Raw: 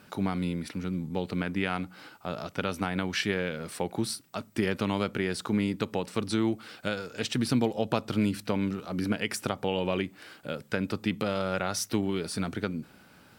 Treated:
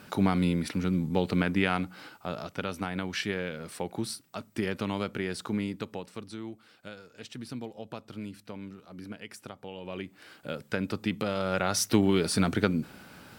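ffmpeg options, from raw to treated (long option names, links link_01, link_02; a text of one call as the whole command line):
ffmpeg -i in.wav -af "volume=23.5dB,afade=type=out:start_time=1.36:duration=1.27:silence=0.421697,afade=type=out:start_time=5.48:duration=0.84:silence=0.316228,afade=type=in:start_time=9.81:duration=0.68:silence=0.251189,afade=type=in:start_time=11.36:duration=0.75:silence=0.446684" out.wav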